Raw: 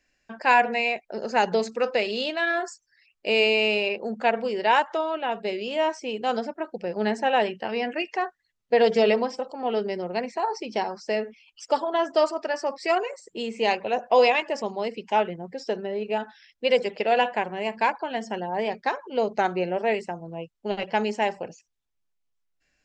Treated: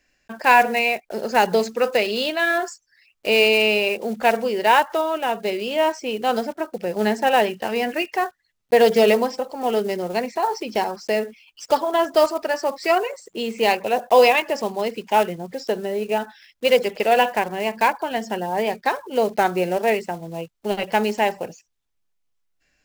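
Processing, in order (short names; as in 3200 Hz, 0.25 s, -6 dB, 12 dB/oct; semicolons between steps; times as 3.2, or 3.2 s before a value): block floating point 5-bit; gain +4.5 dB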